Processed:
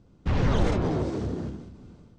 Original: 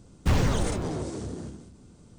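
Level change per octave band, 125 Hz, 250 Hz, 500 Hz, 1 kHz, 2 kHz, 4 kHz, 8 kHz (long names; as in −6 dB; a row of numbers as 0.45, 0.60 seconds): +1.0, +3.0, +3.0, +1.5, −0.5, −2.5, −10.5 decibels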